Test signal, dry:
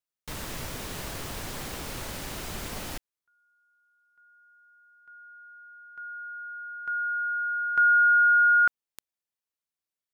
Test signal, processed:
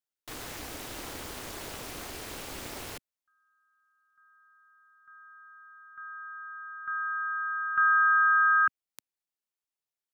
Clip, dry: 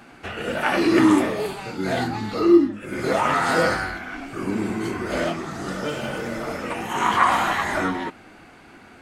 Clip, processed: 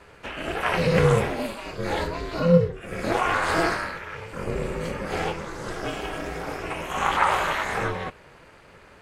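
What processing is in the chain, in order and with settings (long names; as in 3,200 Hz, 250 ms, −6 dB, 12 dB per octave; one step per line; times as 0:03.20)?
high-pass filter 97 Hz 12 dB per octave
dynamic equaliser 2,500 Hz, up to +4 dB, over −47 dBFS, Q 5.2
ring modulation 170 Hz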